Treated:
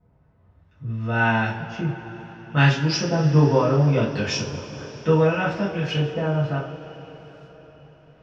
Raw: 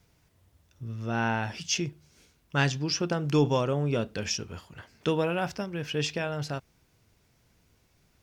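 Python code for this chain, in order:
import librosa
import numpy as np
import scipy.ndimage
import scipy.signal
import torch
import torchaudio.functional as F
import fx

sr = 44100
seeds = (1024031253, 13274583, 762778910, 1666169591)

y = fx.filter_lfo_lowpass(x, sr, shape='saw_up', hz=0.67, low_hz=760.0, high_hz=4800.0, q=0.94)
y = fx.rev_double_slope(y, sr, seeds[0], early_s=0.33, late_s=4.9, knee_db=-21, drr_db=-8.5)
y = y * librosa.db_to_amplitude(-2.0)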